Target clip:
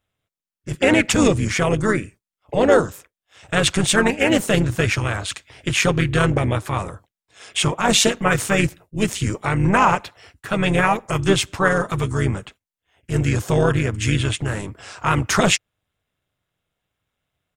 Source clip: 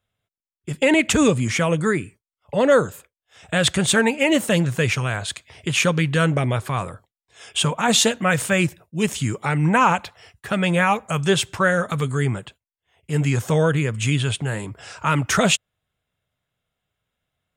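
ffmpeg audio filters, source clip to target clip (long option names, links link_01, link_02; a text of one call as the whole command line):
ffmpeg -i in.wav -filter_complex "[0:a]tremolo=f=200:d=0.621,asplit=3[link_01][link_02][link_03];[link_02]asetrate=29433,aresample=44100,atempo=1.49831,volume=-15dB[link_04];[link_03]asetrate=35002,aresample=44100,atempo=1.25992,volume=-8dB[link_05];[link_01][link_04][link_05]amix=inputs=3:normalize=0,volume=3dB" out.wav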